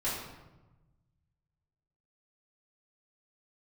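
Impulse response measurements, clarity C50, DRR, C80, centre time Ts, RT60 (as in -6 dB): 1.5 dB, -10.5 dB, 4.0 dB, 62 ms, 1.1 s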